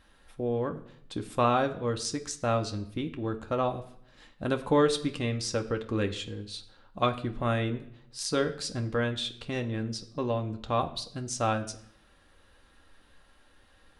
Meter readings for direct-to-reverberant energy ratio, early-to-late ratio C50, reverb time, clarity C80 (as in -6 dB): 5.0 dB, 14.0 dB, 0.65 s, 17.0 dB